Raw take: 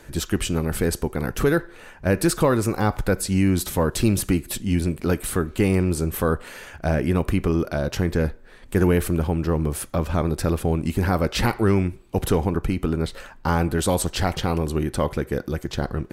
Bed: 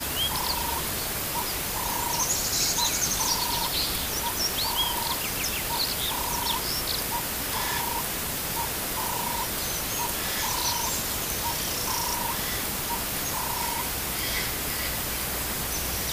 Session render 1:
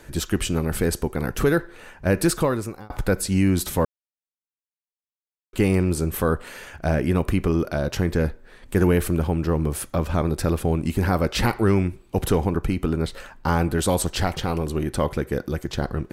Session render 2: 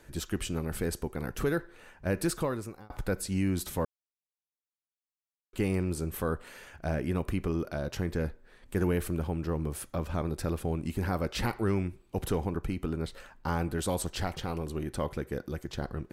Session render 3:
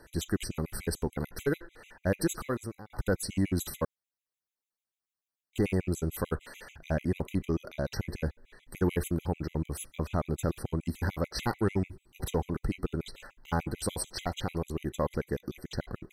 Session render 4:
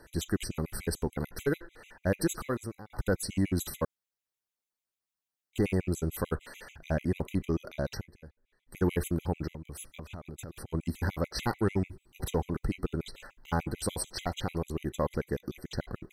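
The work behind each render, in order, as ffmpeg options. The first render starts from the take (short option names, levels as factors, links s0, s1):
-filter_complex "[0:a]asettb=1/sr,asplit=3[s0][s1][s2];[s0]atrim=end=14.254[s3];[s1]atrim=start=14.25:end=14.87,asetpts=PTS-STARTPTS,afade=t=in:d=0.004:c=qsin,afade=t=out:st=0.616:d=0.004:c=qsin,aeval=exprs='if(lt(val(0),0),0.708*val(0),val(0))':c=same[s4];[s2]atrim=start=14.866[s5];[s3][s4]acrossfade=d=0.004:c1=hsin:c2=qsin[s6];[s6][s5]acrossfade=d=0.004:c1=qsin:c2=hsin,asplit=4[s7][s8][s9][s10];[s7]atrim=end=2.9,asetpts=PTS-STARTPTS,afade=t=out:st=2.3:d=0.6[s11];[s8]atrim=start=2.9:end=3.85,asetpts=PTS-STARTPTS,afade=t=in:d=0.004:c=hsin,afade=t=out:st=0.946:d=0.004:c=hsin[s12];[s9]atrim=start=3.85:end=5.53,asetpts=PTS-STARTPTS,volume=0[s13];[s10]atrim=start=5.53,asetpts=PTS-STARTPTS,afade=t=in:d=0.004:c=hsin[s14];[s11][s12][s13][s14]concat=n=4:v=0:a=1"
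-af "volume=0.335"
-filter_complex "[0:a]asplit=2[s0][s1];[s1]asoftclip=type=hard:threshold=0.0422,volume=0.531[s2];[s0][s2]amix=inputs=2:normalize=0,afftfilt=real='re*gt(sin(2*PI*6.8*pts/sr)*(1-2*mod(floor(b*sr/1024/2000),2)),0)':imag='im*gt(sin(2*PI*6.8*pts/sr)*(1-2*mod(floor(b*sr/1024/2000),2)),0)':win_size=1024:overlap=0.75"
-filter_complex "[0:a]asettb=1/sr,asplit=3[s0][s1][s2];[s0]atrim=end=9.534[s3];[s1]atrim=start=9.53:end=10.74,asetpts=PTS-STARTPTS,afade=t=in:d=0.004:c=qsin,afade=t=out:st=1.206:d=0.004:c=qsin,acompressor=threshold=0.0126:ratio=10:attack=3.2:release=140:knee=1:detection=peak[s4];[s2]atrim=start=10.736[s5];[s3][s4]acrossfade=d=0.004:c1=hsin:c2=qsin[s6];[s6][s5]acrossfade=d=0.004:c1=qsin:c2=hsin,asplit=3[s7][s8][s9];[s7]atrim=end=8.07,asetpts=PTS-STARTPTS,afade=t=out:st=7.92:d=0.15:silence=0.11885[s10];[s8]atrim=start=8.07:end=8.65,asetpts=PTS-STARTPTS,volume=0.119[s11];[s9]atrim=start=8.65,asetpts=PTS-STARTPTS,afade=t=in:d=0.15:silence=0.11885[s12];[s10][s11][s12]concat=n=3:v=0:a=1"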